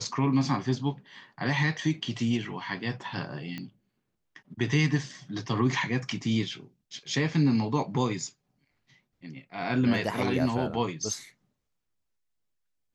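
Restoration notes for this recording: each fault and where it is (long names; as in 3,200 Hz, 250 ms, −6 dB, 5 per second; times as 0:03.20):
0:03.58: click −23 dBFS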